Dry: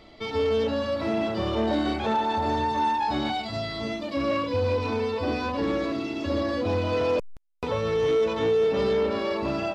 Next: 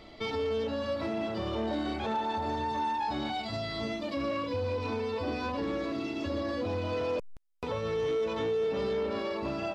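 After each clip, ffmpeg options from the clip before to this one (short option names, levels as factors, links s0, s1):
-af "alimiter=level_in=1.06:limit=0.0631:level=0:latency=1:release=446,volume=0.944"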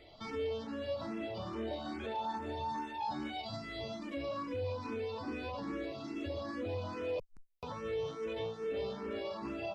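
-filter_complex "[0:a]asplit=2[s0][s1];[s1]afreqshift=2.4[s2];[s0][s2]amix=inputs=2:normalize=1,volume=0.631"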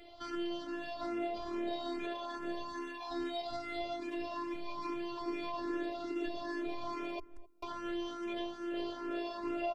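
-filter_complex "[0:a]afftfilt=real='hypot(re,im)*cos(PI*b)':imag='0':win_size=512:overlap=0.75,asplit=2[s0][s1];[s1]adelay=263,lowpass=f=880:p=1,volume=0.126,asplit=2[s2][s3];[s3]adelay=263,lowpass=f=880:p=1,volume=0.21[s4];[s0][s2][s4]amix=inputs=3:normalize=0,volume=1.88"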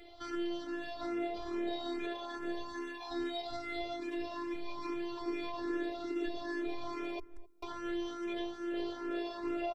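-af "aecho=1:1:2.4:0.31"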